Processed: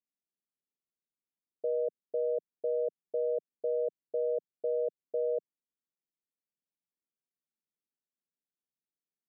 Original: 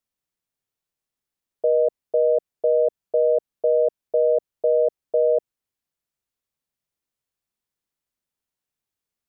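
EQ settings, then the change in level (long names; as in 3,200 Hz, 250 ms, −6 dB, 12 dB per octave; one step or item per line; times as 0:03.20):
Gaussian smoothing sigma 17 samples
high-pass filter 170 Hz 24 dB per octave
−5.0 dB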